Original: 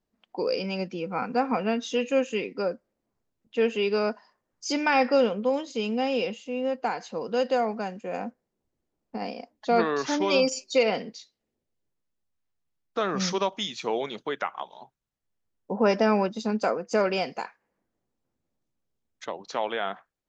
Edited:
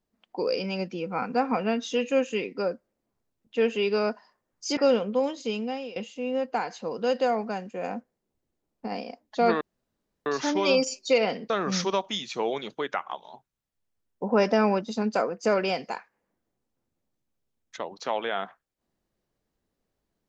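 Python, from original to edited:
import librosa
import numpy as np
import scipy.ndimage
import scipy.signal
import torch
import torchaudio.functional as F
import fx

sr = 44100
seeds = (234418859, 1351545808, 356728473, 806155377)

y = fx.edit(x, sr, fx.cut(start_s=4.77, length_s=0.3),
    fx.fade_out_to(start_s=5.76, length_s=0.5, floor_db=-19.0),
    fx.insert_room_tone(at_s=9.91, length_s=0.65),
    fx.cut(start_s=11.15, length_s=1.83), tone=tone)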